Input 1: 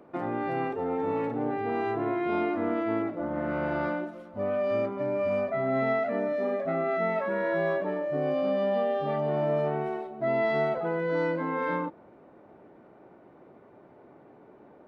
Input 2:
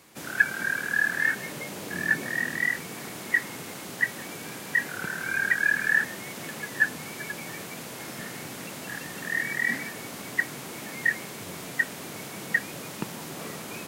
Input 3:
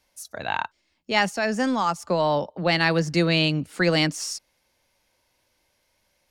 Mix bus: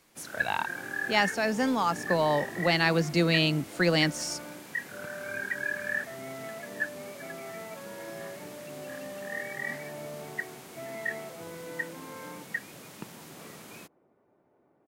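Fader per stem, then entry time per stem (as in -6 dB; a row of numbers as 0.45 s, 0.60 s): -14.5 dB, -9.0 dB, -3.5 dB; 0.55 s, 0.00 s, 0.00 s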